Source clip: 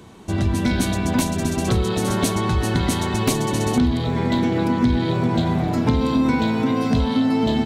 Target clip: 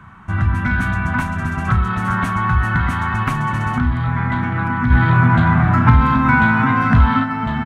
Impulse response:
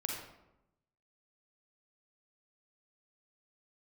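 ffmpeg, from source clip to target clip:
-filter_complex "[0:a]firequalizer=gain_entry='entry(140,0);entry(310,-15);entry(450,-21);entry(730,-6);entry(1300,10);entry(2300,-3);entry(4000,-20)':delay=0.05:min_phase=1,asplit=3[a][b][c];[a]afade=t=out:st=4.9:d=0.02[d];[b]acontrast=49,afade=t=in:st=4.9:d=0.02,afade=t=out:st=7.23:d=0.02[e];[c]afade=t=in:st=7.23:d=0.02[f];[d][e][f]amix=inputs=3:normalize=0,asplit=2[g][h];[h]adelay=33,volume=-13.5dB[i];[g][i]amix=inputs=2:normalize=0,volume=4.5dB"

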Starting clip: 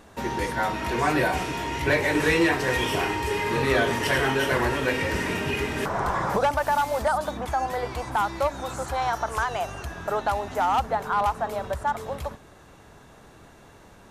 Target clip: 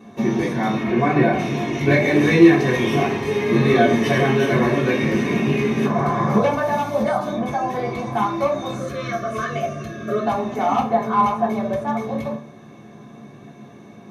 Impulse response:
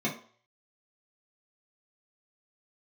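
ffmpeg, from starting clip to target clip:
-filter_complex "[0:a]asettb=1/sr,asplit=3[a][b][c];[a]atrim=end=0.834[d];[b]atrim=start=0.83:end=1.39,asetpts=PTS-STARTPTS,afade=t=in:d=0.004:c=qsin,afade=t=out:st=0.556:d=0.004:c=qsin,bass=f=250:g=0,treble=f=4k:g=-12[e];[c]atrim=start=1.386[f];[d][e]acrossfade=d=0.004:c1=hsin:c2=qsin[g];[g][f]acrossfade=d=0.004:c1=qsin:c2=hsin,asettb=1/sr,asplit=3[h][i][j];[h]atrim=end=8.764[k];[i]atrim=start=8.76:end=10.25,asetpts=PTS-STARTPTS,afade=t=in:d=0.004:c=qsin,afade=t=out:st=1.486:d=0.004:c=qsin,asuperstop=centerf=860:order=20:qfactor=2.3[l];[j]atrim=start=10.246[m];[k][l]acrossfade=d=0.004:c1=hsin:c2=qsin[n];[n][m]acrossfade=d=0.004:c1=qsin:c2=hsin[o];[1:a]atrim=start_sample=2205[p];[o][p]afir=irnorm=-1:irlink=0,volume=-4dB"

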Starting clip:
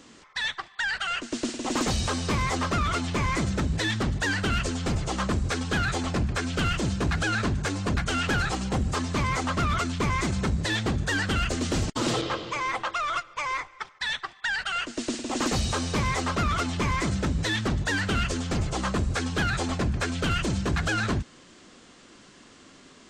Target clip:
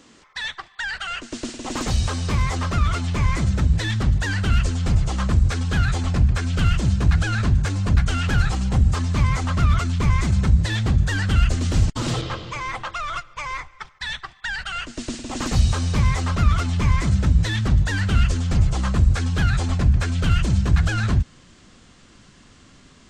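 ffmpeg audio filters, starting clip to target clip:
-af "asubboost=boost=4.5:cutoff=150"

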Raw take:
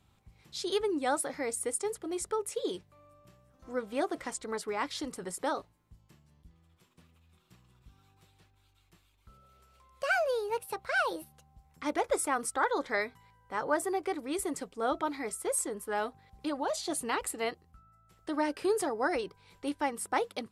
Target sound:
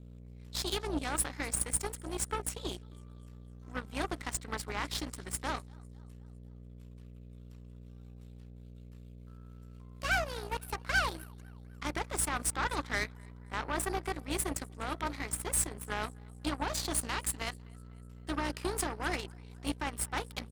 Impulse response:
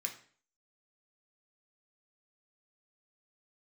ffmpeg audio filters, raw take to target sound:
-af "highpass=220,alimiter=level_in=1dB:limit=-24dB:level=0:latency=1:release=12,volume=-1dB,aeval=exprs='val(0)+0.00891*(sin(2*PI*60*n/s)+sin(2*PI*2*60*n/s)/2+sin(2*PI*3*60*n/s)/3+sin(2*PI*4*60*n/s)/4+sin(2*PI*5*60*n/s)/5)':c=same,equalizer=f=510:w=1.8:g=-13,aecho=1:1:252|504|756|1008:0.0891|0.0508|0.029|0.0165,aeval=exprs='0.075*(cos(1*acos(clip(val(0)/0.075,-1,1)))-cos(1*PI/2))+0.00944*(cos(7*acos(clip(val(0)/0.075,-1,1)))-cos(7*PI/2))':c=same,volume=5dB"

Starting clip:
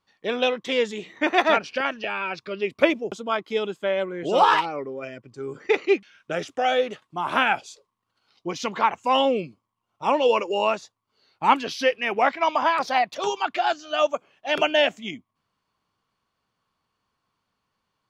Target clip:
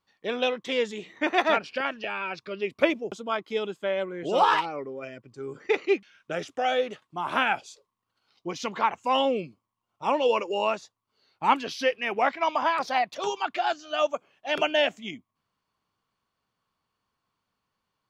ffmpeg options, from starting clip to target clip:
-filter_complex "[0:a]asettb=1/sr,asplit=3[a][b][c];[a]atrim=end=1.554[d];[b]atrim=start=1.55:end=2.01,asetpts=PTS-STARTPTS,afade=t=in:d=0.004:c=qsin,afade=t=out:st=0.456:d=0.004:c=qsin,bandreject=f=6k:w=8.9[e];[c]atrim=start=2.006[f];[d][e]acrossfade=d=0.004:c1=hsin:c2=qsin[g];[g][f]acrossfade=d=0.004:c1=qsin:c2=hsin,volume=-3.5dB"

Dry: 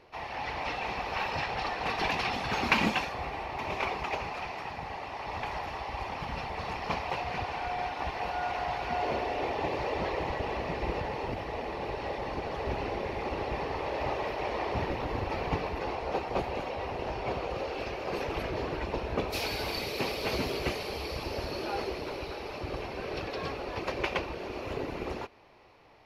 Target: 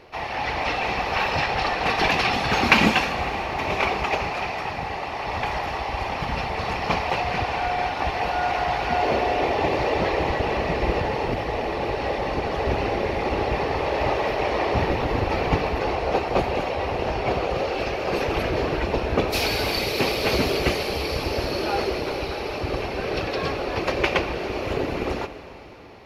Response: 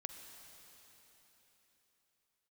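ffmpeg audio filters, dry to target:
-filter_complex "[0:a]equalizer=f=980:w=5.9:g=-3.5,asplit=2[a][b];[1:a]atrim=start_sample=2205[c];[b][c]afir=irnorm=-1:irlink=0,volume=4dB[d];[a][d]amix=inputs=2:normalize=0,volume=3.5dB"

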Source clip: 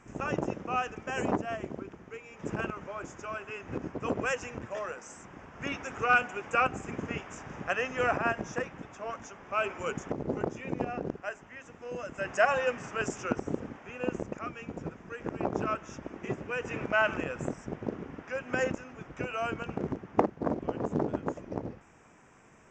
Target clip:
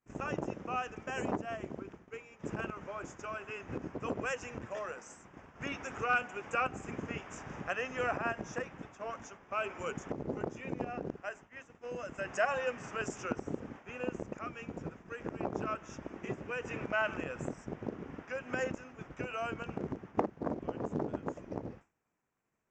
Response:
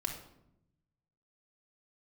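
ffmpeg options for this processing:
-filter_complex "[0:a]agate=range=-33dB:threshold=-42dB:ratio=3:detection=peak,asplit=2[a][b];[b]acompressor=threshold=-41dB:ratio=6,volume=3dB[c];[a][c]amix=inputs=2:normalize=0,volume=-7.5dB"

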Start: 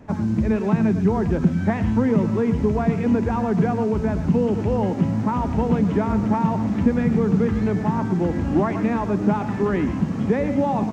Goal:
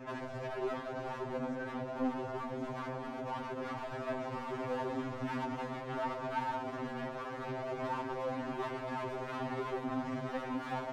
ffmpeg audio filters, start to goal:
-filter_complex "[0:a]acrossover=split=120|710|1500[a][b][c][d];[a]acompressor=threshold=-38dB:ratio=4[e];[b]acompressor=threshold=-22dB:ratio=4[f];[c]acompressor=threshold=-34dB:ratio=4[g];[d]acompressor=threshold=-49dB:ratio=4[h];[e][f][g][h]amix=inputs=4:normalize=0,asettb=1/sr,asplit=3[i][j][k];[i]atrim=end=1.154[l];[j]atrim=start=1.15:end=3.66,asetpts=PTS-STARTPTS,afade=t=in:d=0.004:c=qsin,afade=t=out:st=2.506:d=0.004:c=qsin,equalizer=f=2.6k:w=1.1:g=-14.5[m];[k]atrim=start=3.656[n];[l][m]acrossfade=d=0.004:c1=hsin:c2=qsin[o];[o][n]acrossfade=d=0.004:c1=qsin:c2=hsin,volume=31dB,asoftclip=hard,volume=-31dB,adynamicequalizer=threshold=0.00447:dfrequency=190:dqfactor=4.4:tfrequency=190:tqfactor=4.4:attack=5:release=100:ratio=0.375:range=3:mode=cutabove:tftype=bell,asplit=2[p][q];[q]highpass=f=720:p=1,volume=15dB,asoftclip=type=tanh:threshold=-27dB[r];[p][r]amix=inputs=2:normalize=0,lowpass=f=2.5k:p=1,volume=-6dB,afftfilt=real='re*2.45*eq(mod(b,6),0)':imag='im*2.45*eq(mod(b,6),0)':win_size=2048:overlap=0.75,volume=-1dB"

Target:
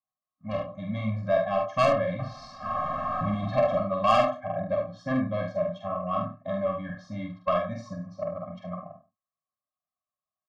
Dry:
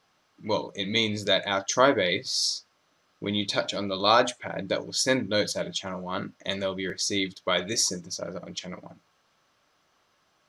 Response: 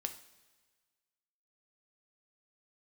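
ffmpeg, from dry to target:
-filter_complex "[0:a]asettb=1/sr,asplit=3[a][b][c];[a]atrim=end=2.194[d];[b]atrim=start=2.19:end=3.78,asetpts=PTS-STARTPTS,afade=t=in:d=0.004:c=qsin,afade=t=out:st=1.586:d=0.004:c=qsin,aeval=exprs='val(0)+0.5*0.0562*sgn(val(0))':c=same[e];[c]atrim=start=3.776[f];[d][e]acrossfade=d=0.004:c1=hsin:c2=qsin[g];[g][f]acrossfade=d=0.004:c1=qsin:c2=hsin,agate=range=-33dB:threshold=-40dB:ratio=3:detection=peak,lowpass=f=1k:t=q:w=4.6,equalizer=f=100:t=o:w=0.77:g=2.5,asplit=2[h][i];[i]adelay=99.13,volume=-17dB,highshelf=f=4k:g=-2.23[j];[h][j]amix=inputs=2:normalize=0,asoftclip=type=tanh:threshold=-14dB,asplit=2[k][l];[l]aecho=0:1:46|73:0.631|0.355[m];[k][m]amix=inputs=2:normalize=0,afftfilt=real='re*eq(mod(floor(b*sr/1024/260),2),0)':imag='im*eq(mod(floor(b*sr/1024/260),2),0)':win_size=1024:overlap=0.75"

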